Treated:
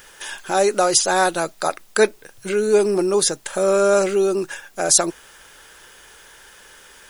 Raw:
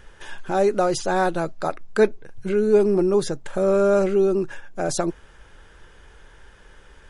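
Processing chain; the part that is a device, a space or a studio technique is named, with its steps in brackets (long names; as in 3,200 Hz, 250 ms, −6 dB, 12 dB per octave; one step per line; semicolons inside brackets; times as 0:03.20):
turntable without a phono preamp (RIAA equalisation recording; white noise bed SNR 36 dB)
level +4.5 dB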